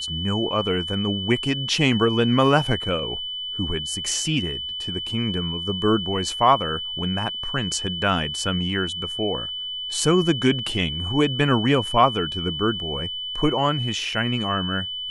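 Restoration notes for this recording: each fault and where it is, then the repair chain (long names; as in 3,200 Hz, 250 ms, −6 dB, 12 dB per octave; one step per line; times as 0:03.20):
whistle 3,000 Hz −28 dBFS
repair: notch filter 3,000 Hz, Q 30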